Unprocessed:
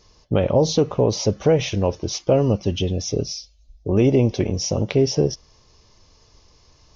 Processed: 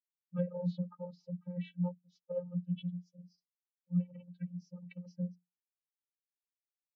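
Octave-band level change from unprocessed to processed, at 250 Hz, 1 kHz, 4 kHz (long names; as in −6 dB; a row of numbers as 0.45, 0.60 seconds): −15.5, −26.5, −32.5 decibels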